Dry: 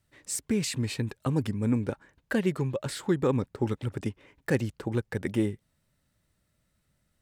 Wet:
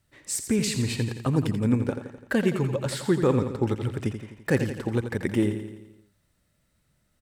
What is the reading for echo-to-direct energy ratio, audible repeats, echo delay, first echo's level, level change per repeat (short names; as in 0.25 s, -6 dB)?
-7.5 dB, 6, 85 ms, -9.0 dB, -5.0 dB